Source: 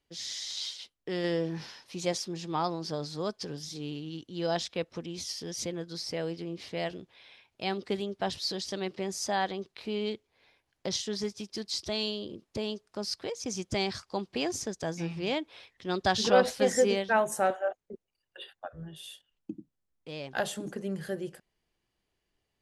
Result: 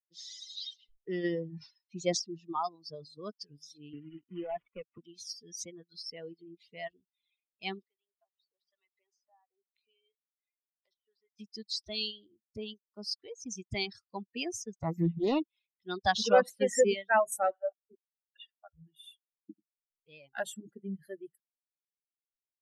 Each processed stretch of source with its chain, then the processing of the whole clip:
0.54–2.53 s: low-pass 8.1 kHz 24 dB/octave + bass shelf 500 Hz +5 dB + decay stretcher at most 100 dB/s
3.93–4.98 s: CVSD coder 16 kbps + three bands compressed up and down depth 70%
7.86–11.39 s: high-pass 620 Hz + low-pass that closes with the level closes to 1.1 kHz, closed at -30.5 dBFS + compression 2:1, threshold -59 dBFS
14.80–15.47 s: bass shelf 470 Hz +10.5 dB + loudspeaker Doppler distortion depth 0.46 ms
whole clip: expander on every frequency bin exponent 2; reverb removal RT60 1.5 s; bass shelf 160 Hz -3.5 dB; trim +2.5 dB

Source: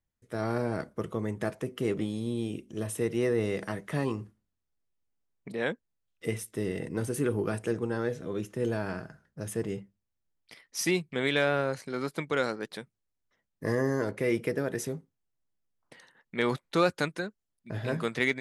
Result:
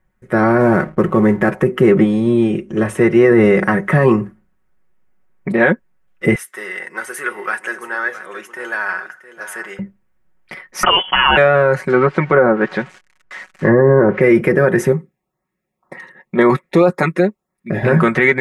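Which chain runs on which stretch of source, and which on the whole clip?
0.60–1.50 s: CVSD coder 64 kbps + de-hum 156.1 Hz, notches 35 + hysteresis with a dead band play -48.5 dBFS
2.04–3.31 s: low-pass 9.1 kHz + peaking EQ 200 Hz -3.5 dB 2 oct
6.35–9.79 s: high-pass 1.4 kHz + peaking EQ 2.5 kHz -4.5 dB 0.32 oct + delay 669 ms -13.5 dB
10.83–11.37 s: frequency inversion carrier 3.2 kHz + level flattener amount 70%
11.89–14.21 s: zero-crossing glitches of -31.5 dBFS + low-pass that closes with the level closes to 1.1 kHz, closed at -24.5 dBFS + distance through air 110 m
14.92–17.83 s: LFO notch saw up 1.9 Hz 520–3300 Hz + comb of notches 1.5 kHz
whole clip: resonant high shelf 2.7 kHz -13 dB, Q 1.5; comb 5.4 ms, depth 70%; loudness maximiser +20 dB; trim -1 dB

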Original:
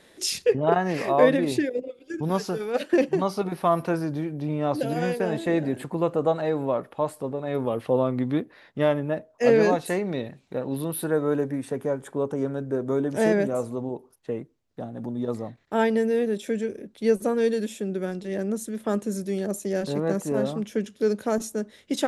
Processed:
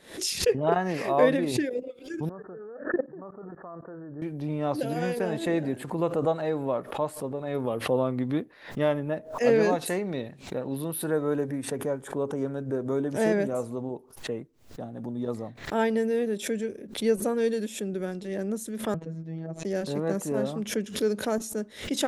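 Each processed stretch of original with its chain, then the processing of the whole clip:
2.29–4.22 s: rippled Chebyshev low-pass 1.8 kHz, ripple 6 dB + level held to a coarse grid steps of 19 dB
18.94–19.65 s: robot voice 162 Hz + tape spacing loss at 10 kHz 39 dB
whole clip: treble shelf 11 kHz +3 dB; swell ahead of each attack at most 130 dB/s; trim -3 dB

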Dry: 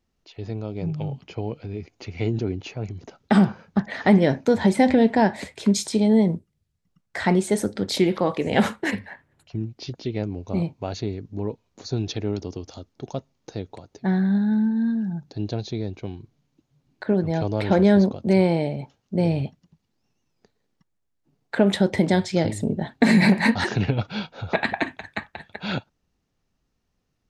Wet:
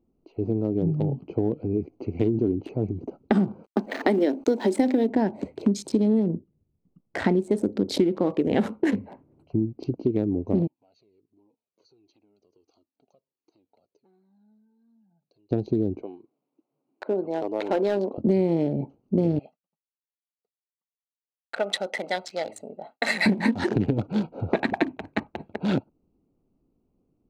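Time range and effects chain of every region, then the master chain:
3.64–5.09 s: steep high-pass 240 Hz + treble shelf 3.8 kHz +9 dB + word length cut 8-bit, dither none
10.67–15.51 s: compression 5:1, threshold -36 dBFS + band-pass filter 4.4 kHz, Q 1.3 + Shepard-style flanger falling 1.4 Hz
16.02–18.18 s: band-pass 680–6300 Hz + hard clipper -19 dBFS
19.39–23.26 s: expander -49 dBFS + high-pass 1.1 kHz + comb 1.5 ms, depth 62%
whole clip: local Wiener filter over 25 samples; peaking EQ 310 Hz +12.5 dB 1.5 oct; compression 6:1, threshold -19 dBFS

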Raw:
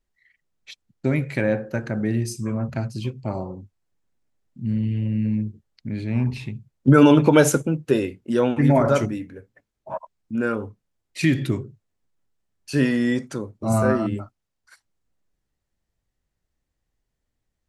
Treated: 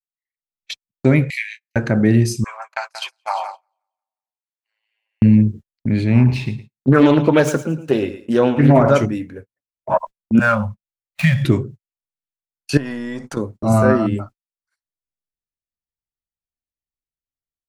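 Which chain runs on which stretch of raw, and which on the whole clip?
1.30–1.76 s: steep high-pass 1.9 kHz 96 dB/octave + flutter echo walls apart 3.1 m, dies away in 0.22 s
2.44–5.22 s: elliptic high-pass 790 Hz, stop band 70 dB + feedback delay 178 ms, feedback 41%, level -7 dB
6.17–8.91 s: median filter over 3 samples + thinning echo 112 ms, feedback 24%, high-pass 220 Hz, level -12.5 dB + loudspeaker Doppler distortion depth 0.31 ms
10.39–11.45 s: median filter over 9 samples + Chebyshev band-stop 210–560 Hz, order 4
12.77–13.37 s: partial rectifier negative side -3 dB + peaking EQ 930 Hz +8 dB 1.1 oct + compression 12:1, threshold -33 dBFS
whole clip: gate -41 dBFS, range -38 dB; dynamic bell 9.3 kHz, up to -6 dB, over -48 dBFS, Q 0.81; level rider gain up to 17 dB; trim -1 dB

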